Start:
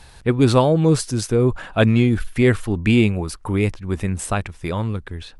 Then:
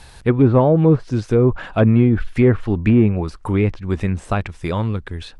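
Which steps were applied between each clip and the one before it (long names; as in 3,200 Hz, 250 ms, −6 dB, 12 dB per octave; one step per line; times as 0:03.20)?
de-essing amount 80%
treble cut that deepens with the level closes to 1,500 Hz, closed at −12 dBFS
level +2.5 dB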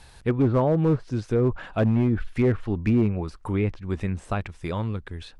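hard clipping −7.5 dBFS, distortion −20 dB
level −7 dB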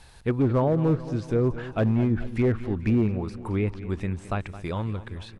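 repeating echo 218 ms, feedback 58%, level −15 dB
level −1.5 dB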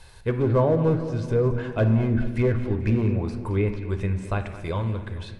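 convolution reverb RT60 1.2 s, pre-delay 10 ms, DRR 6.5 dB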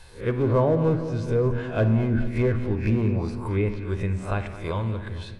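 peak hold with a rise ahead of every peak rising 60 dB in 0.30 s
level −1 dB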